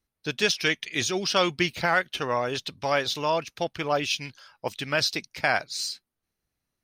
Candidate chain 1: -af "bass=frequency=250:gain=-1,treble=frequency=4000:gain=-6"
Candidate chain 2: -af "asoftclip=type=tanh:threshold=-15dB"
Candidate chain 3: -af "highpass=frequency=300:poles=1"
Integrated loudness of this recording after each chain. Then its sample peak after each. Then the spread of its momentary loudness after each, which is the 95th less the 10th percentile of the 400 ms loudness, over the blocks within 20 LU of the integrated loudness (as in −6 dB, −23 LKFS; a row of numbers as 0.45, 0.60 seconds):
−27.5, −27.5, −27.0 LKFS; −10.0, −15.5, −9.5 dBFS; 11, 9, 10 LU